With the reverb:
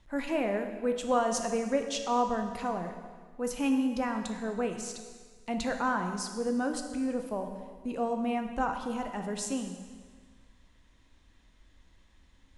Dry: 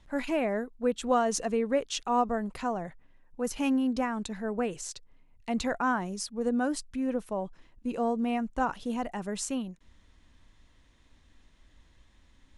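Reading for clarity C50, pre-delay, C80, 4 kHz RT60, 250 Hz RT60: 6.5 dB, 7 ms, 8.0 dB, 1.5 s, 1.6 s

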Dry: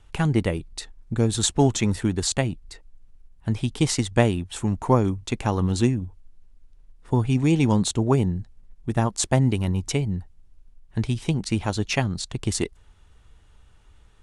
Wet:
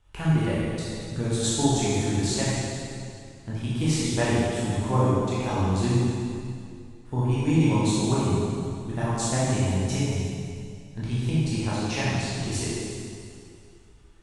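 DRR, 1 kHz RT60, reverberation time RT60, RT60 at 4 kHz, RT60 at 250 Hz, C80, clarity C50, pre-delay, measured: −9.5 dB, 2.4 s, 2.4 s, 2.2 s, 2.4 s, −1.5 dB, −4.0 dB, 8 ms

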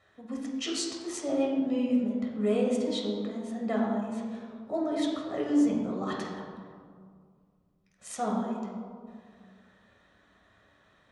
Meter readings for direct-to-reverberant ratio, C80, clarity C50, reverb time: −2.5 dB, 4.0 dB, 2.0 dB, 2.1 s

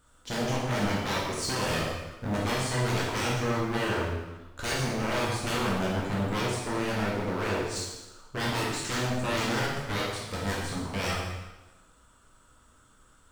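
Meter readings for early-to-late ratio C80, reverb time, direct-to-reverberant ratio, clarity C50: 3.0 dB, 1.1 s, −5.5 dB, 0.5 dB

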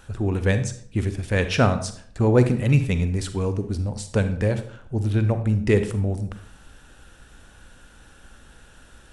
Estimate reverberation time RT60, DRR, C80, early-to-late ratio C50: 0.55 s, 9.0 dB, 14.0 dB, 10.5 dB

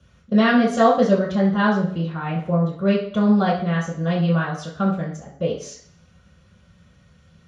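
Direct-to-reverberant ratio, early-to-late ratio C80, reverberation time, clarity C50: −5.5 dB, 10.0 dB, 0.55 s, 6.0 dB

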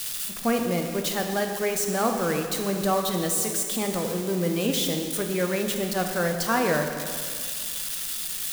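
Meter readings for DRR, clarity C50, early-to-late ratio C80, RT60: 3.5 dB, 5.0 dB, 6.5 dB, 2.1 s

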